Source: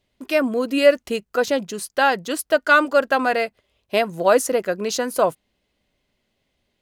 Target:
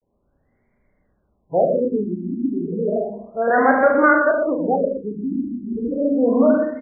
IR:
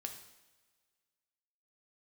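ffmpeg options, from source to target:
-filter_complex "[0:a]areverse,acompressor=threshold=-15dB:ratio=6,aecho=1:1:34|73:0.531|0.501,asplit=2[link_01][link_02];[1:a]atrim=start_sample=2205,lowshelf=frequency=310:gain=11,adelay=119[link_03];[link_02][link_03]afir=irnorm=-1:irlink=0,volume=-4.5dB[link_04];[link_01][link_04]amix=inputs=2:normalize=0,afftfilt=real='re*lt(b*sr/1024,360*pow(2400/360,0.5+0.5*sin(2*PI*0.32*pts/sr)))':imag='im*lt(b*sr/1024,360*pow(2400/360,0.5+0.5*sin(2*PI*0.32*pts/sr)))':win_size=1024:overlap=0.75,volume=2.5dB"

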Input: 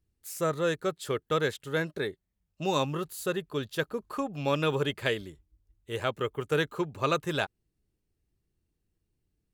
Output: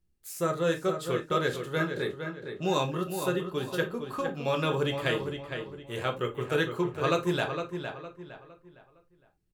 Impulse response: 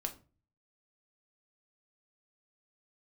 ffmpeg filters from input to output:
-filter_complex "[0:a]asplit=2[link_01][link_02];[link_02]adelay=460,lowpass=frequency=3600:poles=1,volume=-7dB,asplit=2[link_03][link_04];[link_04]adelay=460,lowpass=frequency=3600:poles=1,volume=0.35,asplit=2[link_05][link_06];[link_06]adelay=460,lowpass=frequency=3600:poles=1,volume=0.35,asplit=2[link_07][link_08];[link_08]adelay=460,lowpass=frequency=3600:poles=1,volume=0.35[link_09];[link_01][link_03][link_05][link_07][link_09]amix=inputs=5:normalize=0[link_10];[1:a]atrim=start_sample=2205,atrim=end_sample=3969[link_11];[link_10][link_11]afir=irnorm=-1:irlink=0"

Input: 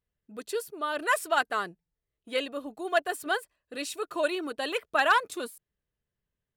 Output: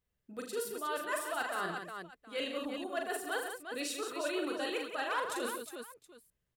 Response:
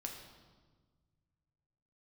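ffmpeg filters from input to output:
-af "areverse,acompressor=threshold=-35dB:ratio=6,areverse,aecho=1:1:41|81|130|176|361|722:0.596|0.237|0.2|0.422|0.473|0.119"

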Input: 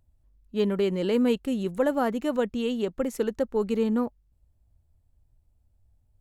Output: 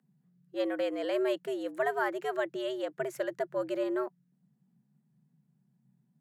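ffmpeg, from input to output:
ffmpeg -i in.wav -af "afreqshift=130,equalizer=frequency=1700:width=2:gain=9.5,volume=-7dB" out.wav

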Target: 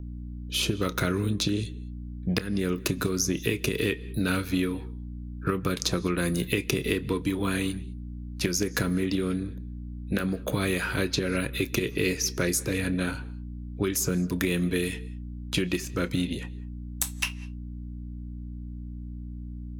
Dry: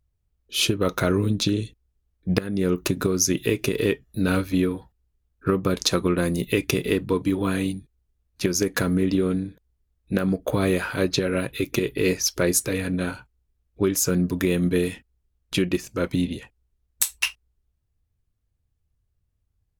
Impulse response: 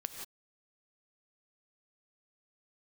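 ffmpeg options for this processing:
-filter_complex "[0:a]aeval=exprs='val(0)+0.0141*(sin(2*PI*60*n/s)+sin(2*PI*2*60*n/s)/2+sin(2*PI*3*60*n/s)/3+sin(2*PI*4*60*n/s)/4+sin(2*PI*5*60*n/s)/5)':channel_layout=same,acrossover=split=410|1300[link_01][link_02][link_03];[link_01]acompressor=threshold=-27dB:ratio=4[link_04];[link_02]acompressor=threshold=-40dB:ratio=4[link_05];[link_03]acompressor=threshold=-28dB:ratio=4[link_06];[link_04][link_05][link_06]amix=inputs=3:normalize=0,asplit=2[link_07][link_08];[1:a]atrim=start_sample=2205,lowpass=8100,adelay=29[link_09];[link_08][link_09]afir=irnorm=-1:irlink=0,volume=-14.5dB[link_10];[link_07][link_10]amix=inputs=2:normalize=0,volume=1.5dB"

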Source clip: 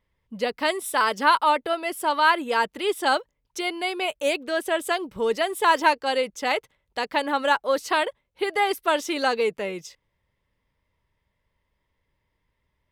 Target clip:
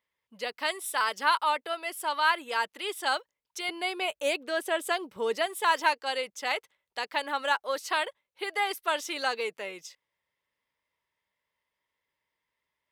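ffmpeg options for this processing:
ffmpeg -i in.wav -af "asetnsamples=nb_out_samples=441:pad=0,asendcmd='3.69 highpass f 410;5.46 highpass f 950',highpass=frequency=1100:poles=1,volume=-3dB" out.wav

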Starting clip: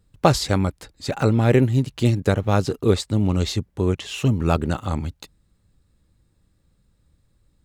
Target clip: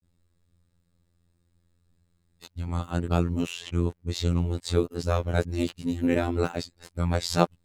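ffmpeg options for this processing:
ffmpeg -i in.wav -af "areverse,afftfilt=real='hypot(re,im)*cos(PI*b)':imag='0':win_size=2048:overlap=0.75,volume=-2.5dB" out.wav

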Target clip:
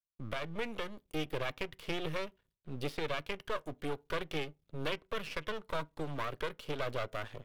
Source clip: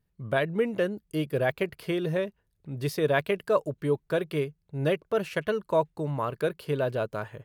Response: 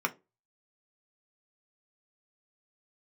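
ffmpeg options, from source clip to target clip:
-filter_complex "[0:a]agate=range=-33dB:threshold=-56dB:ratio=3:detection=peak,acrossover=split=260|880|3700[link_01][link_02][link_03][link_04];[link_01]acompressor=threshold=-36dB:ratio=4[link_05];[link_02]acompressor=threshold=-34dB:ratio=4[link_06];[link_03]acompressor=threshold=-35dB:ratio=4[link_07];[link_04]acompressor=threshold=-56dB:ratio=4[link_08];[link_05][link_06][link_07][link_08]amix=inputs=4:normalize=0,aeval=exprs='max(val(0),0)':channel_layout=same,asplit=2[link_09][link_10];[1:a]atrim=start_sample=2205[link_11];[link_10][link_11]afir=irnorm=-1:irlink=0,volume=-18.5dB[link_12];[link_09][link_12]amix=inputs=2:normalize=0,alimiter=limit=-23dB:level=0:latency=1:release=451,equalizer=frequency=3400:width=1.8:gain=7"

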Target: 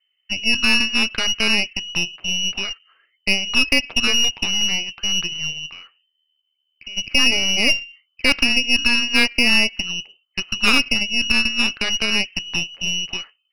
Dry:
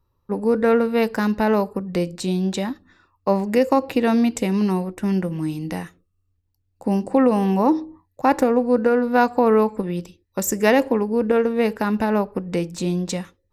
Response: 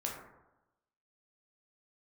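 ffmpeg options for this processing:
-filter_complex "[0:a]asplit=3[link_01][link_02][link_03];[link_01]afade=type=out:start_time=5.65:duration=0.02[link_04];[link_02]acompressor=threshold=-37dB:ratio=2.5,afade=type=in:start_time=5.65:duration=0.02,afade=type=out:start_time=6.96:duration=0.02[link_05];[link_03]afade=type=in:start_time=6.96:duration=0.02[link_06];[link_04][link_05][link_06]amix=inputs=3:normalize=0,lowpass=frequency=2600:width_type=q:width=0.5098,lowpass=frequency=2600:width_type=q:width=0.6013,lowpass=frequency=2600:width_type=q:width=0.9,lowpass=frequency=2600:width_type=q:width=2.563,afreqshift=-3100,aeval=exprs='0.668*(cos(1*acos(clip(val(0)/0.668,-1,1)))-cos(1*PI/2))+0.237*(cos(4*acos(clip(val(0)/0.668,-1,1)))-cos(4*PI/2))+0.075*(cos(6*acos(clip(val(0)/0.668,-1,1)))-cos(6*PI/2))+0.0075*(cos(7*acos(clip(val(0)/0.668,-1,1)))-cos(7*PI/2))+0.0596*(cos(8*acos(clip(val(0)/0.668,-1,1)))-cos(8*PI/2))':channel_layout=same,volume=-1.5dB"

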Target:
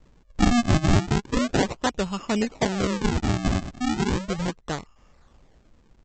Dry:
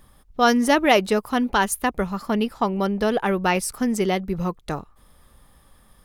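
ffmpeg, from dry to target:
ffmpeg -i in.wav -af "highshelf=frequency=4700:gain=5.5,aresample=16000,acrusher=samples=19:mix=1:aa=0.000001:lfo=1:lforange=30.4:lforate=0.35,aresample=44100,volume=-2dB" out.wav

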